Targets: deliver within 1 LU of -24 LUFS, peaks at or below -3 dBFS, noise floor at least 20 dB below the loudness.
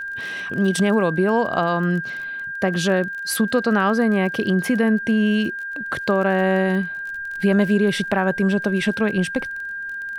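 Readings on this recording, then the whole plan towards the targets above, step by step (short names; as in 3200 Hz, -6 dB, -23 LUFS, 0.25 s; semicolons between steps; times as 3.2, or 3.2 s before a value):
ticks 28/s; steady tone 1600 Hz; tone level -27 dBFS; loudness -20.5 LUFS; peak -6.0 dBFS; loudness target -24.0 LUFS
-> de-click; notch 1600 Hz, Q 30; gain -3.5 dB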